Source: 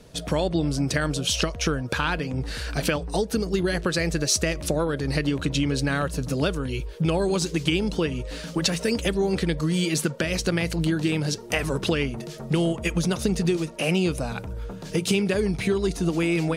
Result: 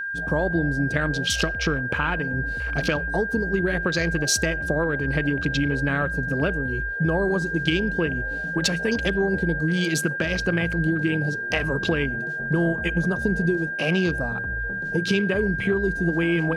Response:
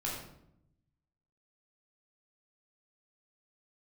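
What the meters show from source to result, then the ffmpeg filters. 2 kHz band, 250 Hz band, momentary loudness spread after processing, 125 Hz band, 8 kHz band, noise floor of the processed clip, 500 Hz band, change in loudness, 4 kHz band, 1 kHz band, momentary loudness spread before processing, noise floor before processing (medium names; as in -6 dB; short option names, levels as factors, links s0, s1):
+9.0 dB, +0.5 dB, 3 LU, +0.5 dB, -2.5 dB, -29 dBFS, 0.0 dB, +1.5 dB, -1.5 dB, 0.0 dB, 5 LU, -38 dBFS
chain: -filter_complex "[0:a]afwtdn=0.0224,asplit=2[s0][s1];[1:a]atrim=start_sample=2205,atrim=end_sample=6615[s2];[s1][s2]afir=irnorm=-1:irlink=0,volume=0.0531[s3];[s0][s3]amix=inputs=2:normalize=0,aeval=exprs='val(0)+0.0447*sin(2*PI*1600*n/s)':c=same"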